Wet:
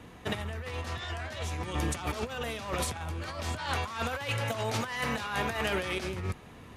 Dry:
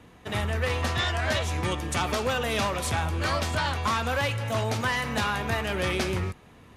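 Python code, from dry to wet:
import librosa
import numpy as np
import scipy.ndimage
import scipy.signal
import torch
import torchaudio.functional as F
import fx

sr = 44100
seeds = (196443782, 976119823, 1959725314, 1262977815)

y = fx.low_shelf(x, sr, hz=230.0, db=-7.0, at=(3.58, 6.0))
y = fx.over_compress(y, sr, threshold_db=-31.0, ratio=-0.5)
y = y * librosa.db_to_amplitude(-1.5)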